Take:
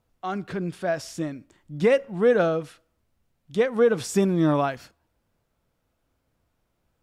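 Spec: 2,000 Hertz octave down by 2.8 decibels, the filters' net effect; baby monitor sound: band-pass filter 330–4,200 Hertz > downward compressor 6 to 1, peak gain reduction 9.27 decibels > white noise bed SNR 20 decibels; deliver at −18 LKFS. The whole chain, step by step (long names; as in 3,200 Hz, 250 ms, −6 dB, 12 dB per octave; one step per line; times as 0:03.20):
band-pass filter 330–4,200 Hz
parametric band 2,000 Hz −3.5 dB
downward compressor 6 to 1, threshold −25 dBFS
white noise bed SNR 20 dB
level +14 dB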